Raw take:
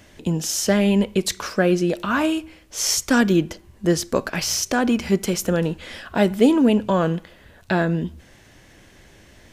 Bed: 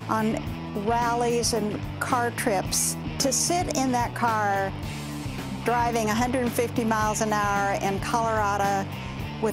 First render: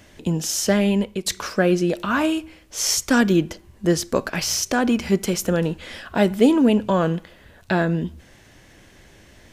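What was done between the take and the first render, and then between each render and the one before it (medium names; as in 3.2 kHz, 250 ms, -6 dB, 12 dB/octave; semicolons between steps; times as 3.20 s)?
0.62–1.26 s: fade out equal-power, to -9.5 dB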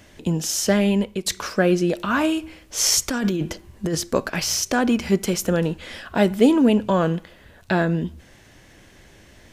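2.42–3.95 s: compressor with a negative ratio -21 dBFS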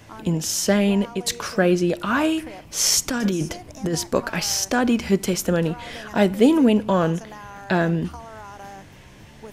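add bed -15.5 dB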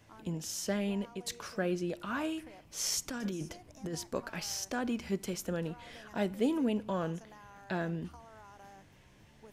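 trim -14.5 dB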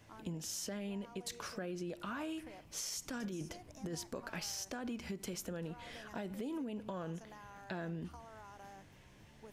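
peak limiter -28.5 dBFS, peak gain reduction 9.5 dB; compression, threshold -38 dBFS, peak gain reduction 6.5 dB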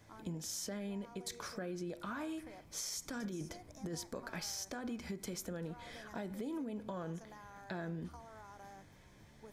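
band-stop 2.8 kHz, Q 5.3; de-hum 126.4 Hz, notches 20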